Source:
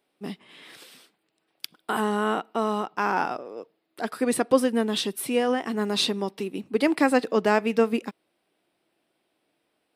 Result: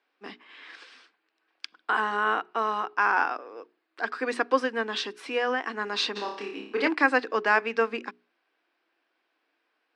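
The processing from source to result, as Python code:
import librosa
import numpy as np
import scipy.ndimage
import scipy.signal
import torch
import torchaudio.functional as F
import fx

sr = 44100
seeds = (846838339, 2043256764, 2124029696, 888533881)

y = fx.cabinet(x, sr, low_hz=300.0, low_slope=24, high_hz=5800.0, hz=(390.0, 600.0, 1100.0, 1600.0, 2400.0, 3600.0), db=(-4, -6, 5, 9, 3, -3))
y = fx.hum_notches(y, sr, base_hz=60, count=7)
y = fx.room_flutter(y, sr, wall_m=5.0, rt60_s=0.54, at=(6.15, 6.87), fade=0.02)
y = y * 10.0 ** (-1.5 / 20.0)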